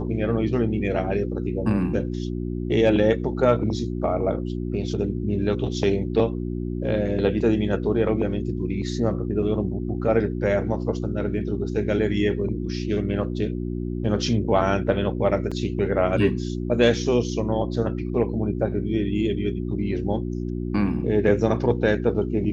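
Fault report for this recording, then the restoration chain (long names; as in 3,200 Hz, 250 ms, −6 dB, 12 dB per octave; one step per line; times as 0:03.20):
mains hum 60 Hz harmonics 6 −28 dBFS
0:15.51–0:15.52: drop-out 5.7 ms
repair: hum removal 60 Hz, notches 6
repair the gap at 0:15.51, 5.7 ms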